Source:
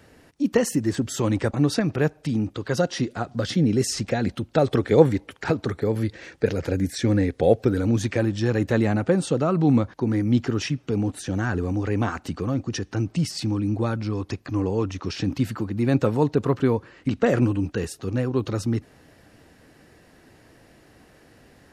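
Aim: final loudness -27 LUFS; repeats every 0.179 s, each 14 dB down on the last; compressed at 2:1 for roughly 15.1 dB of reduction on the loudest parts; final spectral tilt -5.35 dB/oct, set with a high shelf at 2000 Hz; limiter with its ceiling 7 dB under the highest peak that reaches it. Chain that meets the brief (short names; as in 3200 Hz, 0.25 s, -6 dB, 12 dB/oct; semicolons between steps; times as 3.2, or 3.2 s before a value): high shelf 2000 Hz +4 dB; compressor 2:1, threshold -37 dBFS; limiter -23 dBFS; feedback echo 0.179 s, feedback 20%, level -14 dB; gain +7.5 dB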